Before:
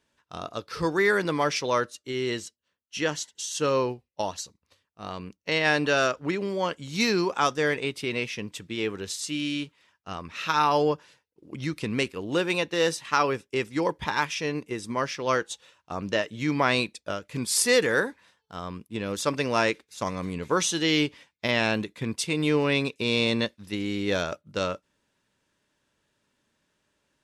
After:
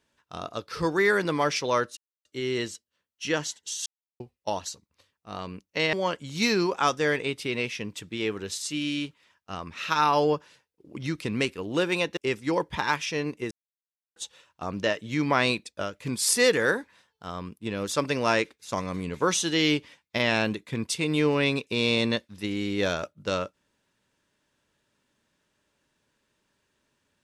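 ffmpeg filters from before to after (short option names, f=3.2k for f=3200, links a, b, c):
-filter_complex "[0:a]asplit=8[a][b][c][d][e][f][g][h];[a]atrim=end=1.97,asetpts=PTS-STARTPTS,afade=t=out:st=1.966:d=0.004:c=hsin,apad=pad_dur=0.28[i];[b]atrim=start=1.97:end=3.58,asetpts=PTS-STARTPTS,afade=t=in:d=0.004:c=hsin,afade=t=out:st=1.606:d=0.004:c=hsin[j];[c]atrim=start=3.58:end=3.92,asetpts=PTS-STARTPTS,volume=0[k];[d]atrim=start=3.92:end=5.652,asetpts=PTS-STARTPTS,afade=t=in:d=0.004:c=hsin[l];[e]atrim=start=6.508:end=12.752[m];[f]atrim=start=13.458:end=14.8,asetpts=PTS-STARTPTS,afade=t=out:st=1.338:d=0.004:c=hsin[n];[g]atrim=start=14.8:end=15.45,asetpts=PTS-STARTPTS,volume=0[o];[h]atrim=start=15.45,asetpts=PTS-STARTPTS,afade=t=in:d=0.004:c=hsin[p];[i][j][k][l]concat=n=4:v=0:a=1[q];[q][m]acrossfade=d=0.004:c1=hsin:c2=hsin[r];[n][o][p]concat=n=3:v=0:a=1[s];[r][s]acrossfade=d=0.004:c1=hsin:c2=hsin"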